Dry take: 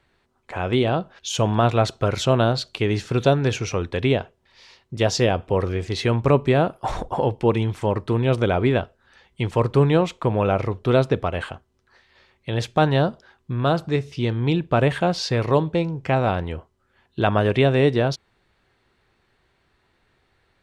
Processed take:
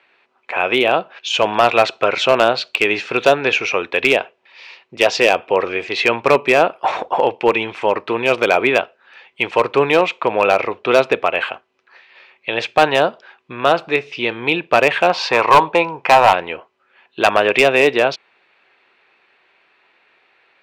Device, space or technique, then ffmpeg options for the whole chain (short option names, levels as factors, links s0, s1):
megaphone: -filter_complex "[0:a]asplit=3[s0][s1][s2];[s0]afade=t=out:st=15.09:d=0.02[s3];[s1]equalizer=f=970:t=o:w=0.76:g=12.5,afade=t=in:st=15.09:d=0.02,afade=t=out:st=16.32:d=0.02[s4];[s2]afade=t=in:st=16.32:d=0.02[s5];[s3][s4][s5]amix=inputs=3:normalize=0,highpass=490,lowpass=3700,equalizer=f=2500:t=o:w=0.34:g=10.5,asoftclip=type=hard:threshold=0.224,volume=2.82"